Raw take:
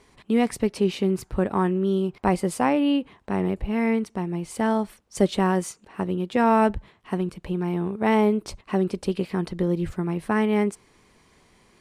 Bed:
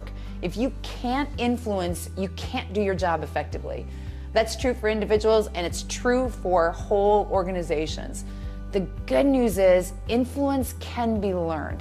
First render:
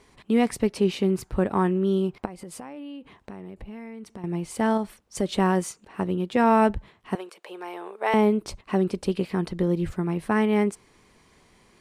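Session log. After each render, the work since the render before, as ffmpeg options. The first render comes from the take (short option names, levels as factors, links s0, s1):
-filter_complex "[0:a]asettb=1/sr,asplit=3[s0][s1][s2];[s0]atrim=end=2.254[s3];[s1]atrim=start=2.25:end=4.24,asetpts=PTS-STARTPTS,afade=t=in:d=0.004:c=qsin,afade=t=out:st=1.986:d=0.004:c=qsin,acompressor=threshold=0.0178:ratio=16:attack=3.2:release=140:knee=1:detection=peak[s4];[s2]atrim=start=4.236[s5];[s3][s4]acrossfade=d=0.004:c1=hsin:c2=qsin[s6];[s6][s5]acrossfade=d=0.004:c1=qsin:c2=hsin,asettb=1/sr,asplit=3[s7][s8][s9];[s7]atrim=end=4.774[s10];[s8]atrim=start=4.77:end=5.37,asetpts=PTS-STARTPTS,afade=t=in:d=0.004:c=qsin,afade=t=out:st=0.596:d=0.004:c=qsin,acompressor=threshold=0.0631:ratio=2:attack=3.2:release=140:knee=1:detection=peak[s11];[s9]atrim=start=5.366[s12];[s10][s11]acrossfade=d=0.004:c1=hsin:c2=qsin[s13];[s13][s12]acrossfade=d=0.004:c1=qsin:c2=hsin,asettb=1/sr,asplit=3[s14][s15][s16];[s14]atrim=end=7.154[s17];[s15]atrim=start=7.15:end=8.14,asetpts=PTS-STARTPTS,afade=t=in:d=0.004:c=qsin,afade=t=out:st=0.986:d=0.004:c=qsin,highpass=f=470:w=0.5412,highpass=f=470:w=1.3066[s18];[s16]atrim=start=8.136[s19];[s17][s18]acrossfade=d=0.004:c1=hsin:c2=qsin[s20];[s20][s19]acrossfade=d=0.004:c1=qsin:c2=hsin"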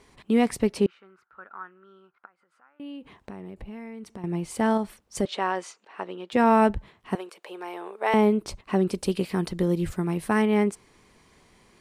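-filter_complex "[0:a]asettb=1/sr,asplit=3[s0][s1][s2];[s0]atrim=end=0.864[s3];[s1]atrim=start=0.86:end=2.8,asetpts=PTS-STARTPTS,afade=t=in:d=0.004:c=qsin,afade=t=out:st=1.936:d=0.004:c=qsin,bandpass=f=1400:t=q:w=9.6[s4];[s2]atrim=start=2.796[s5];[s3][s4]acrossfade=d=0.004:c1=hsin:c2=qsin[s6];[s6][s5]acrossfade=d=0.004:c1=qsin:c2=hsin,asettb=1/sr,asplit=3[s7][s8][s9];[s7]atrim=end=5.254[s10];[s8]atrim=start=5.25:end=6.32,asetpts=PTS-STARTPTS,afade=t=in:d=0.004:c=qsin,afade=t=out:st=1.066:d=0.004:c=qsin,highpass=560,lowpass=4900[s11];[s9]atrim=start=6.316[s12];[s10][s11]acrossfade=d=0.004:c1=hsin:c2=qsin[s13];[s13][s12]acrossfade=d=0.004:c1=qsin:c2=hsin,asettb=1/sr,asplit=3[s14][s15][s16];[s14]atrim=end=8.894[s17];[s15]atrim=start=8.89:end=10.42,asetpts=PTS-STARTPTS,afade=t=in:d=0.004:c=qsin,afade=t=out:st=1.526:d=0.004:c=qsin,aemphasis=mode=production:type=cd[s18];[s16]atrim=start=10.416[s19];[s17][s18]acrossfade=d=0.004:c1=hsin:c2=qsin[s20];[s20][s19]acrossfade=d=0.004:c1=qsin:c2=hsin"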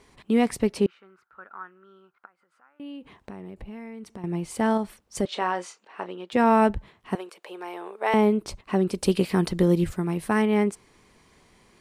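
-filter_complex "[0:a]asettb=1/sr,asplit=3[s0][s1][s2];[s0]atrim=end=5.314[s3];[s1]atrim=start=5.31:end=6.1,asetpts=PTS-STARTPTS,afade=t=in:d=0.004:c=qsin,afade=t=out:st=0.786:d=0.004:c=qsin,asplit=2[s4][s5];[s5]adelay=28,volume=0.299[s6];[s4][s6]amix=inputs=2:normalize=0,atrim=end_sample=34839[s7];[s2]atrim=start=6.096[s8];[s3][s7]acrossfade=d=0.004:c1=hsin:c2=qsin[s9];[s9][s8]acrossfade=d=0.004:c1=qsin:c2=hsin,asplit=3[s10][s11][s12];[s10]atrim=end=9.022[s13];[s11]atrim=start=9.018:end=9.842,asetpts=PTS-STARTPTS,volume=1.58[s14];[s12]atrim=start=9.838[s15];[s13][s14]acrossfade=d=0.004:c1=hsin:c2=hsin[s16];[s16][s15]acrossfade=d=0.004:c1=hsin:c2=hsin"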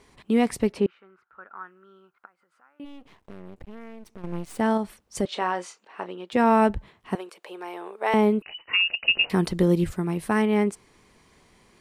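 -filter_complex "[0:a]asettb=1/sr,asplit=3[s0][s1][s2];[s0]atrim=end=0.724[s3];[s1]atrim=start=0.72:end=1.57,asetpts=PTS-STARTPTS,afade=t=in:d=0.004:c=qsin,afade=t=out:st=0.846:d=0.004:c=qsin,bass=f=250:g=-2,treble=f=4000:g=-10[s4];[s2]atrim=start=1.566[s5];[s3][s4]acrossfade=d=0.004:c1=hsin:c2=qsin[s6];[s6][s5]acrossfade=d=0.004:c1=qsin:c2=hsin,asplit=3[s7][s8][s9];[s7]afade=t=out:st=2.84:d=0.02[s10];[s8]aeval=exprs='max(val(0),0)':c=same,afade=t=in:st=2.84:d=0.02,afade=t=out:st=4.58:d=0.02[s11];[s9]afade=t=in:st=4.58:d=0.02[s12];[s10][s11][s12]amix=inputs=3:normalize=0,asettb=1/sr,asplit=3[s13][s14][s15];[s13]atrim=end=8.424[s16];[s14]atrim=start=8.42:end=9.3,asetpts=PTS-STARTPTS,afade=t=in:d=0.004:c=qsin,afade=t=out:st=0.876:d=0.004:c=qsin,lowpass=f=2600:t=q:w=0.5098,lowpass=f=2600:t=q:w=0.6013,lowpass=f=2600:t=q:w=0.9,lowpass=f=2600:t=q:w=2.563,afreqshift=-3000[s17];[s15]atrim=start=9.296[s18];[s16][s17]acrossfade=d=0.004:c1=hsin:c2=qsin[s19];[s19][s18]acrossfade=d=0.004:c1=qsin:c2=hsin"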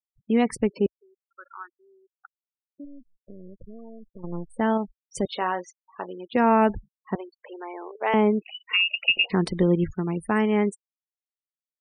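-af "afftfilt=real='re*gte(hypot(re,im),0.0178)':imag='im*gte(hypot(re,im),0.0178)':win_size=1024:overlap=0.75,equalizer=f=62:w=1.5:g=-6.5"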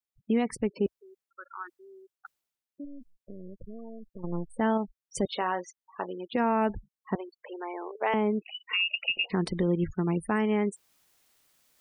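-af "areverse,acompressor=mode=upward:threshold=0.00708:ratio=2.5,areverse,alimiter=limit=0.133:level=0:latency=1:release=356"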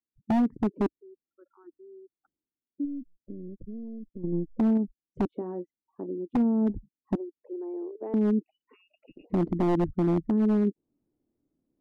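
-af "lowpass=f=300:t=q:w=3.4,aeval=exprs='0.126*(abs(mod(val(0)/0.126+3,4)-2)-1)':c=same"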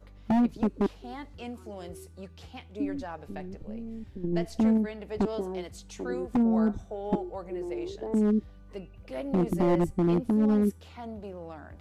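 -filter_complex "[1:a]volume=0.168[s0];[0:a][s0]amix=inputs=2:normalize=0"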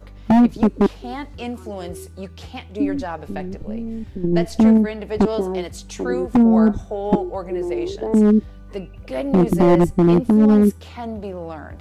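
-af "volume=3.35"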